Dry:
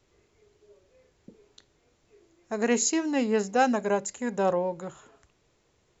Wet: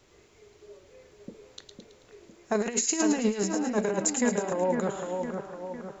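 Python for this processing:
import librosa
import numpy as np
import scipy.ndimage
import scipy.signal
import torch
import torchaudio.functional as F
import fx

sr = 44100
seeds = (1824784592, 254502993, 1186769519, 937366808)

y = fx.low_shelf(x, sr, hz=190.0, db=-4.5)
y = fx.over_compress(y, sr, threshold_db=-30.0, ratio=-0.5)
y = fx.echo_split(y, sr, split_hz=2100.0, low_ms=506, high_ms=109, feedback_pct=52, wet_db=-5.5)
y = y * 10.0 ** (3.5 / 20.0)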